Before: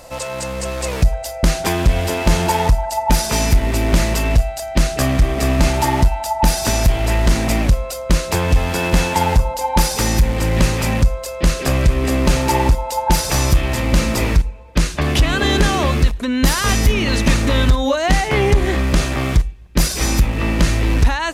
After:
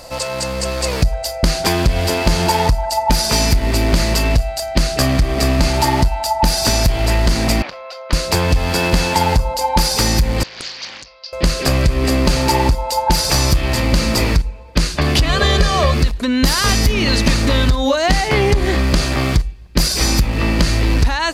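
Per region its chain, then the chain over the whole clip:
7.62–8.13 s: high-pass 780 Hz + distance through air 270 m
10.43–11.33 s: steep low-pass 5.3 kHz 72 dB/octave + differentiator + loudspeaker Doppler distortion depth 0.98 ms
15.29–15.94 s: treble shelf 11 kHz -8.5 dB + comb 1.7 ms, depth 80%
whole clip: peaking EQ 4.6 kHz +9.5 dB 0.29 oct; compression, threshold -12 dBFS; trim +2.5 dB

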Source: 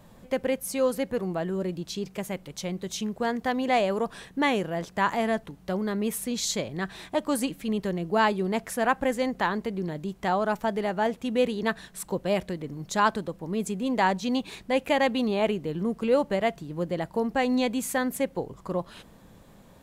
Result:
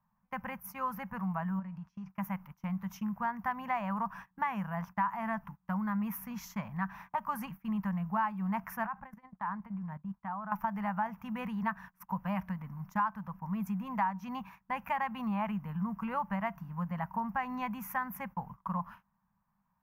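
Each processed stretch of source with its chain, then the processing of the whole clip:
1.59–2.10 s: low-pass 7.3 kHz + compression 3:1, threshold -37 dBFS + de-hum 319.4 Hz, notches 37
8.86–10.52 s: treble shelf 3.2 kHz -9.5 dB + level held to a coarse grid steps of 18 dB
whole clip: FFT filter 120 Hz 0 dB, 200 Hz +7 dB, 350 Hz -29 dB, 530 Hz -15 dB, 960 Hz +13 dB, 2.7 kHz -4 dB, 3.9 kHz -24 dB, 5.7 kHz -7 dB, 8.2 kHz -25 dB, 14 kHz +8 dB; gate -39 dBFS, range -22 dB; compression 6:1, threshold -22 dBFS; trim -6.5 dB

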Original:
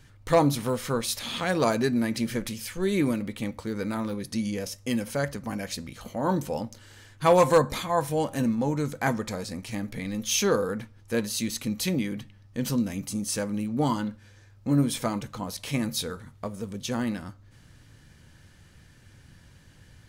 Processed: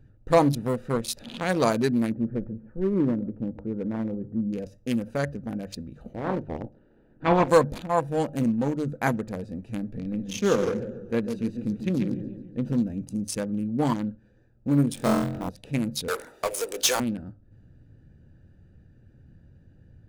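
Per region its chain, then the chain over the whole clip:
2.12–4.53 s: low-pass 1.3 kHz 24 dB/octave + delay 136 ms -17 dB
6.14–7.48 s: spectral peaks clipped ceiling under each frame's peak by 18 dB + tape spacing loss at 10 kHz 40 dB
9.97–12.73 s: treble shelf 4 kHz -10 dB + delay 160 ms -12.5 dB + modulated delay 143 ms, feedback 51%, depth 134 cents, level -8 dB
14.95–15.49 s: send-on-delta sampling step -37 dBFS + flutter echo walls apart 3.9 m, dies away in 1 s
16.08–17.00 s: inverse Chebyshev high-pass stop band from 190 Hz + tilt EQ +3 dB/octave + power-law waveshaper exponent 0.5
whole clip: local Wiener filter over 41 samples; hum notches 50/100/150 Hz; trim +2 dB

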